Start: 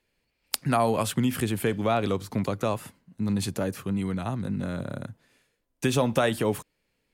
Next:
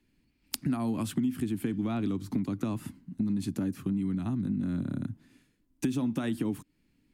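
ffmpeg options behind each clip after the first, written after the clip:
ffmpeg -i in.wav -filter_complex "[0:a]lowshelf=frequency=380:width_type=q:width=3:gain=9,acrossover=split=160[link_01][link_02];[link_01]alimiter=limit=-23dB:level=0:latency=1:release=211[link_03];[link_03][link_02]amix=inputs=2:normalize=0,acompressor=threshold=-27dB:ratio=4,volume=-2dB" out.wav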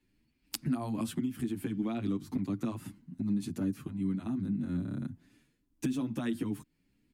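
ffmpeg -i in.wav -filter_complex "[0:a]asplit=2[link_01][link_02];[link_02]adelay=8.4,afreqshift=2.5[link_03];[link_01][link_03]amix=inputs=2:normalize=1" out.wav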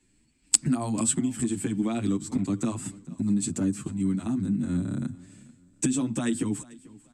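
ffmpeg -i in.wav -af "lowpass=frequency=7900:width_type=q:width=14,aecho=1:1:440|880:0.0841|0.0278,volume=6dB" out.wav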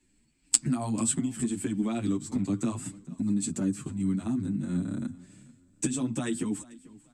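ffmpeg -i in.wav -af "flanger=delay=3:depth=7.1:regen=-42:speed=0.6:shape=triangular,volume=1.5dB" out.wav

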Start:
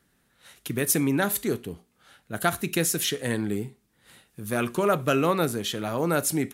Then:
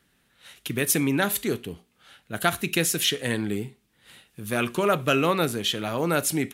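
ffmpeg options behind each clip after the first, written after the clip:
ffmpeg -i in.wav -af "equalizer=frequency=2900:width_type=o:width=1.1:gain=6.5" out.wav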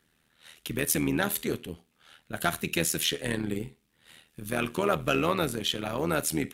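ffmpeg -i in.wav -af "tremolo=f=79:d=0.75,asoftclip=type=tanh:threshold=-12dB" out.wav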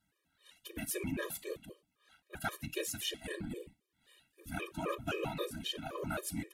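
ffmpeg -i in.wav -af "afftfilt=real='hypot(re,im)*cos(2*PI*random(0))':imag='hypot(re,im)*sin(2*PI*random(1))':win_size=512:overlap=0.75,afftfilt=real='re*gt(sin(2*PI*3.8*pts/sr)*(1-2*mod(floor(b*sr/1024/320),2)),0)':imag='im*gt(sin(2*PI*3.8*pts/sr)*(1-2*mod(floor(b*sr/1024/320),2)),0)':win_size=1024:overlap=0.75,volume=-1.5dB" out.wav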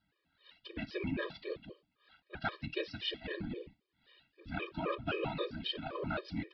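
ffmpeg -i in.wav -af "aresample=11025,aresample=44100,volume=1dB" out.wav

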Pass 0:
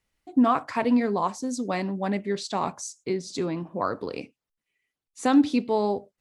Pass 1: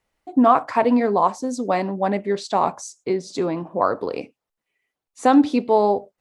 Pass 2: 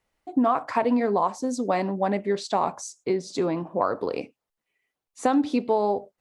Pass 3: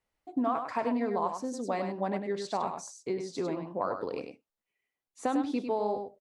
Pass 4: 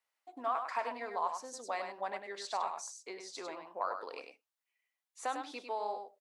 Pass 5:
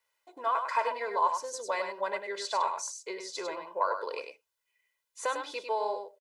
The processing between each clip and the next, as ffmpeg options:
ffmpeg -i in.wav -af "equalizer=frequency=700:width=0.61:gain=9.5" out.wav
ffmpeg -i in.wav -af "acompressor=threshold=-17dB:ratio=4,volume=-1.5dB" out.wav
ffmpeg -i in.wav -af "aecho=1:1:100:0.473,volume=-8dB" out.wav
ffmpeg -i in.wav -af "highpass=850" out.wav
ffmpeg -i in.wav -af "aecho=1:1:2:0.8,volume=4.5dB" out.wav

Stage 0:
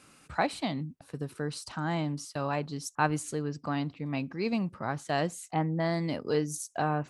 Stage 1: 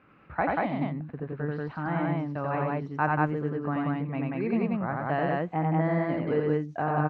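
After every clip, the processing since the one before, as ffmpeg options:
ffmpeg -i in.wav -af "lowpass=frequency=2200:width=0.5412,lowpass=frequency=2200:width=1.3066,aecho=1:1:87.46|186.6:0.794|0.891" out.wav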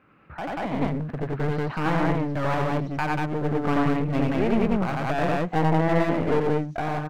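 ffmpeg -i in.wav -af "alimiter=limit=-20dB:level=0:latency=1:release=286,dynaudnorm=framelen=270:gausssize=5:maxgain=10.5dB,aeval=exprs='clip(val(0),-1,0.0335)':channel_layout=same" out.wav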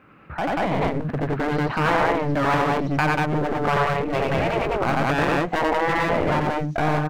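ffmpeg -i in.wav -af "afftfilt=real='re*lt(hypot(re,im),0.355)':imag='im*lt(hypot(re,im),0.355)':win_size=1024:overlap=0.75,volume=7dB" out.wav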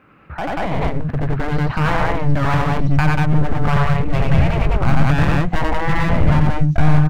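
ffmpeg -i in.wav -af "asubboost=boost=10:cutoff=130,volume=1dB" out.wav

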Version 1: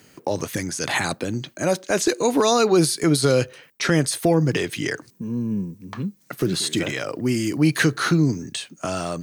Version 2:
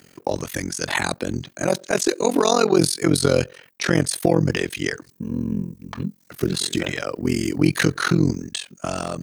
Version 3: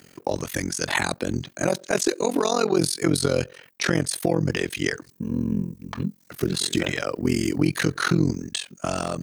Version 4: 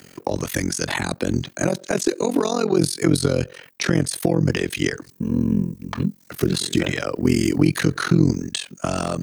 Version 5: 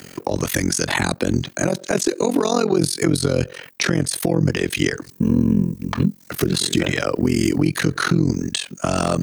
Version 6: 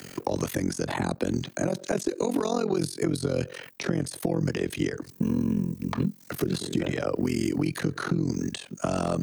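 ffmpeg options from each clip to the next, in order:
ffmpeg -i in.wav -af "tremolo=f=44:d=0.974,volume=4dB" out.wav
ffmpeg -i in.wav -af "alimiter=limit=-9dB:level=0:latency=1:release=311" out.wav
ffmpeg -i in.wav -filter_complex "[0:a]acrossover=split=360[link_01][link_02];[link_02]acompressor=threshold=-27dB:ratio=6[link_03];[link_01][link_03]amix=inputs=2:normalize=0,volume=5dB" out.wav
ffmpeg -i in.wav -af "alimiter=limit=-13.5dB:level=0:latency=1:release=304,volume=6.5dB" out.wav
ffmpeg -i in.wav -filter_complex "[0:a]acrossover=split=110|980[link_01][link_02][link_03];[link_01]acompressor=threshold=-40dB:ratio=4[link_04];[link_02]acompressor=threshold=-20dB:ratio=4[link_05];[link_03]acompressor=threshold=-34dB:ratio=4[link_06];[link_04][link_05][link_06]amix=inputs=3:normalize=0,volume=-3dB" out.wav

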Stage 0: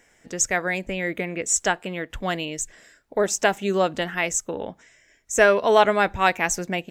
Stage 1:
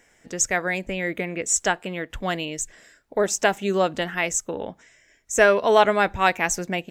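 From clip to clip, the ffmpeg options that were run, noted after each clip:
ffmpeg -i in.wav -af anull out.wav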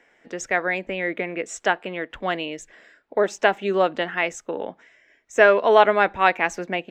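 ffmpeg -i in.wav -filter_complex "[0:a]acrossover=split=220 3800:gain=0.178 1 0.1[link_01][link_02][link_03];[link_01][link_02][link_03]amix=inputs=3:normalize=0,volume=2dB" out.wav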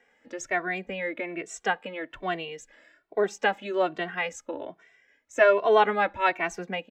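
ffmpeg -i in.wav -filter_complex "[0:a]asplit=2[link_01][link_02];[link_02]adelay=2.1,afreqshift=1.2[link_03];[link_01][link_03]amix=inputs=2:normalize=1,volume=-2.5dB" out.wav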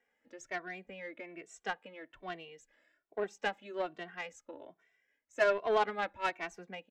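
ffmpeg -i in.wav -af "aeval=exprs='0.422*(cos(1*acos(clip(val(0)/0.422,-1,1)))-cos(1*PI/2))+0.0266*(cos(7*acos(clip(val(0)/0.422,-1,1)))-cos(7*PI/2))':channel_layout=same,volume=-9dB" out.wav

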